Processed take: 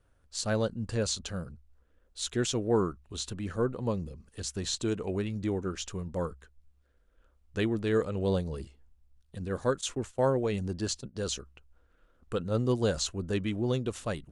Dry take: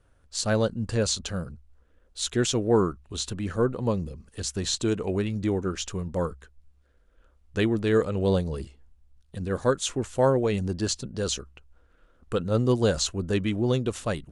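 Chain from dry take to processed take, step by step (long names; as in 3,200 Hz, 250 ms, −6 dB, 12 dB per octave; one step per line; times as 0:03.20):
0:09.81–0:11.16: noise gate −34 dBFS, range −14 dB
level −5 dB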